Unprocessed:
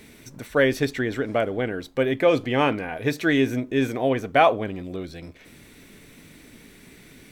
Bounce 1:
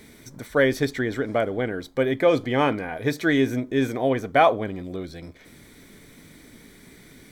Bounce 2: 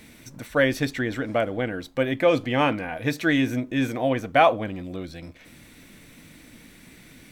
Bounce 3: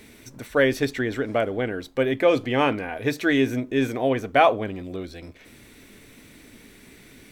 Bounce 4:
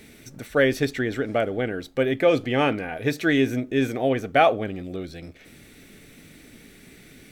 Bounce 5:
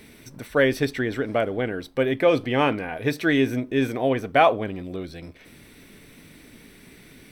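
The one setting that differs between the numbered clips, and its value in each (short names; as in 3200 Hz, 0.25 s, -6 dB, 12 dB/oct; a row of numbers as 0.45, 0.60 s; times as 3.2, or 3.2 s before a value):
notch, frequency: 2700, 410, 160, 1000, 6900 Hz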